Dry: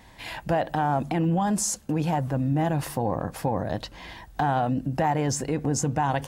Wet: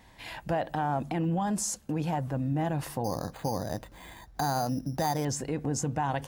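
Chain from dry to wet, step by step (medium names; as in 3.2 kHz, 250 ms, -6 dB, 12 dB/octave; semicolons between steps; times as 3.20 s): 3.04–5.25 s: careless resampling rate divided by 8×, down filtered, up hold; trim -5 dB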